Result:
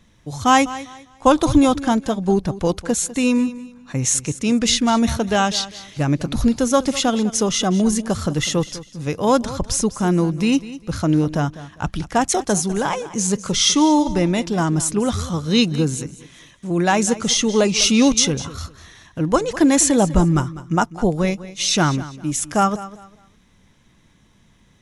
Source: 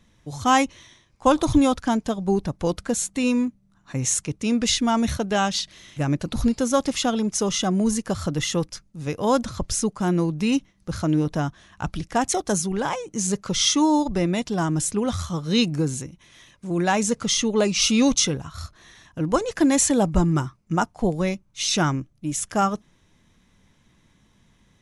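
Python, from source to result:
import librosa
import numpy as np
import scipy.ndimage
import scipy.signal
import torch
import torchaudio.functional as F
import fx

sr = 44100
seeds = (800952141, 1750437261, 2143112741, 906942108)

y = fx.echo_feedback(x, sr, ms=200, feedback_pct=27, wet_db=-16)
y = F.gain(torch.from_numpy(y), 4.0).numpy()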